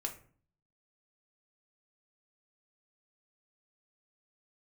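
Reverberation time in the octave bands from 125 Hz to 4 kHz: 0.70, 0.65, 0.50, 0.45, 0.40, 0.30 s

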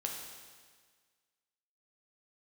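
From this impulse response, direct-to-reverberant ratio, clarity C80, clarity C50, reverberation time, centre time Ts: 0.0 dB, 5.0 dB, 3.0 dB, 1.6 s, 59 ms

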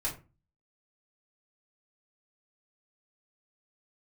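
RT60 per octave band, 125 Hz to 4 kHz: 0.55, 0.45, 0.30, 0.30, 0.25, 0.20 s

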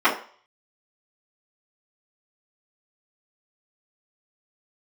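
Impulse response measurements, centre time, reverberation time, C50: 21 ms, 0.45 s, 9.5 dB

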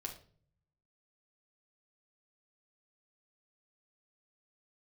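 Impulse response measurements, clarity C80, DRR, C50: 14.5 dB, 0.5 dB, 9.0 dB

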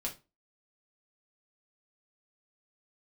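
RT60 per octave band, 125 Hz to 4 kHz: 0.30, 0.35, 0.30, 0.25, 0.25, 0.20 s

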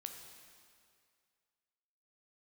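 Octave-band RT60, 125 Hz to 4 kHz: 2.1, 2.0, 2.2, 2.2, 2.1, 2.0 s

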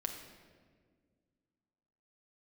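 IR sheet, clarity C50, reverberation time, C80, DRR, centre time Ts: 5.5 dB, 1.8 s, 7.5 dB, 2.5 dB, 35 ms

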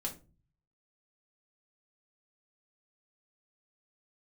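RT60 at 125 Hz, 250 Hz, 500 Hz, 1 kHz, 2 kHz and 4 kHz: 0.90, 0.60, 0.40, 0.30, 0.25, 0.20 s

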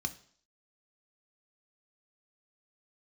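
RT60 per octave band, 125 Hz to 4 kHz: 0.50, 0.55, 0.55, 0.55, 0.50, 0.60 s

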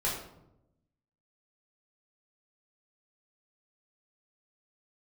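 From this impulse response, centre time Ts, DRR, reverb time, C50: 44 ms, -6.5 dB, 0.85 s, 3.5 dB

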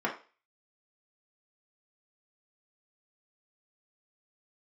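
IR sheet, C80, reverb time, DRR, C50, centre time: 15.0 dB, 0.35 s, -3.5 dB, 9.5 dB, 18 ms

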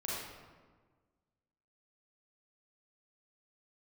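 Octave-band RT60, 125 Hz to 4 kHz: 1.7, 1.8, 1.5, 1.4, 1.2, 0.85 s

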